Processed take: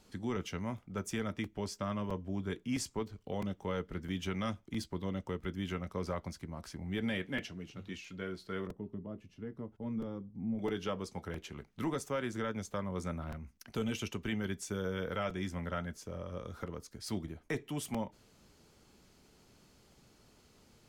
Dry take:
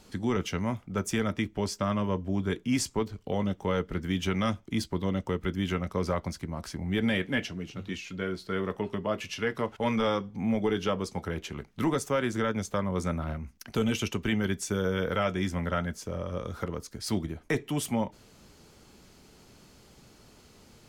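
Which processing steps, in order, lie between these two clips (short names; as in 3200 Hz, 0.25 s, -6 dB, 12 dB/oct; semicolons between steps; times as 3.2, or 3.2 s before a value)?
8.67–10.59 EQ curve 290 Hz 0 dB, 530 Hz -10 dB, 2500 Hz -22 dB; crackling interface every 0.66 s, samples 128, repeat, from 0.78; gain -8 dB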